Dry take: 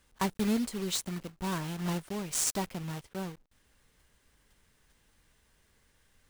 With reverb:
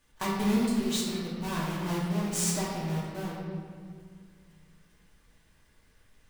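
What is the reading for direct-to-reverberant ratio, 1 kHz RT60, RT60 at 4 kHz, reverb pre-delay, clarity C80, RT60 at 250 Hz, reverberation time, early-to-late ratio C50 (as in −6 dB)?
−6.5 dB, 1.9 s, 1.3 s, 3 ms, 1.5 dB, 2.8 s, 2.1 s, −0.5 dB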